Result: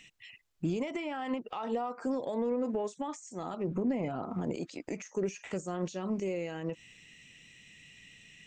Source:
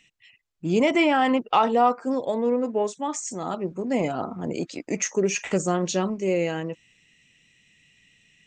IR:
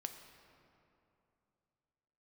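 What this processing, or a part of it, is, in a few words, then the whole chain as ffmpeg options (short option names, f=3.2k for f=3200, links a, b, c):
de-esser from a sidechain: -filter_complex "[0:a]asettb=1/sr,asplit=3[a][b][c];[a]atrim=end=3.674[d];[b]atrim=start=3.67:end=4.23,asetpts=PTS-STARTPTS,afade=t=in:d=0.004:c=qsin,afade=t=out:st=0.556:d=0.004:c=qsin,bass=f=250:g=5,treble=f=4k:g=-13[e];[c]atrim=start=4.226[f];[d][e]acrossfade=d=0.004:c1=hsin:c2=qsin[g];[g][f]acrossfade=d=0.004:c1=qsin:c2=hsin,asplit=2[h][i];[i]highpass=f=5.6k:p=1,apad=whole_len=373465[j];[h][j]sidechaincompress=threshold=-56dB:ratio=4:attack=1.5:release=93,volume=4.5dB"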